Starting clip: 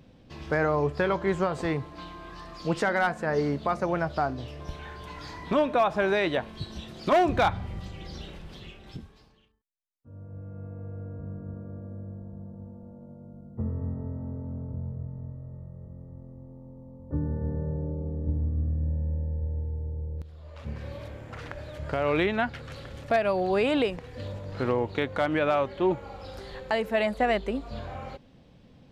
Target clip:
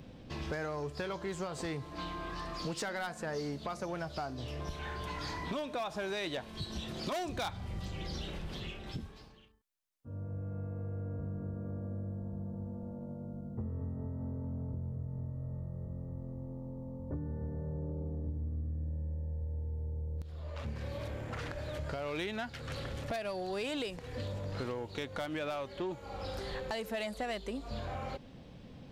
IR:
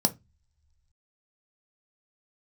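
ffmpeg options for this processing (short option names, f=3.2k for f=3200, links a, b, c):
-filter_complex "[0:a]acrossover=split=4000[a][b];[a]acompressor=threshold=-38dB:ratio=6[c];[c][b]amix=inputs=2:normalize=0,asoftclip=type=tanh:threshold=-32dB,volume=3.5dB"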